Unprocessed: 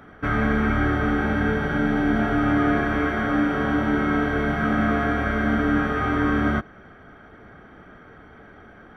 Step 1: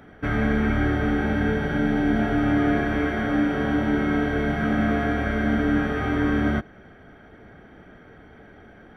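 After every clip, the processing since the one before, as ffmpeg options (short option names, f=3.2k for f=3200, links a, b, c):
-af "equalizer=f=1.2k:t=o:w=0.58:g=-8"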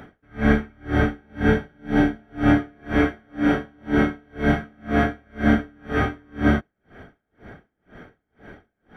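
-af "aeval=exprs='val(0)*pow(10,-39*(0.5-0.5*cos(2*PI*2*n/s))/20)':c=same,volume=7dB"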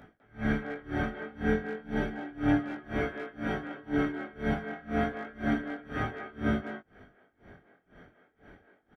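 -filter_complex "[0:a]asplit=2[a][b];[b]adelay=200,highpass=300,lowpass=3.4k,asoftclip=type=hard:threshold=-13dB,volume=-7dB[c];[a][c]amix=inputs=2:normalize=0,flanger=delay=18.5:depth=4.6:speed=0.31,volume=-7dB"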